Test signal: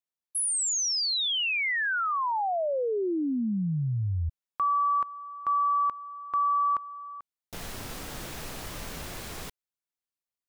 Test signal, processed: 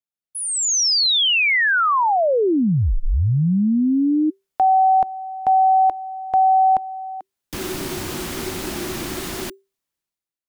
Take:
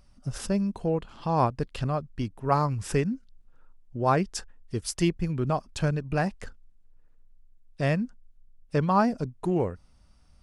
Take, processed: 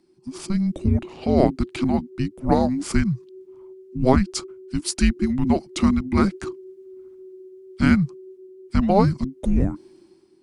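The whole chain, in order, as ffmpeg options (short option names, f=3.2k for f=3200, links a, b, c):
-af "dynaudnorm=f=130:g=9:m=14dB,afreqshift=-390,volume=-3.5dB"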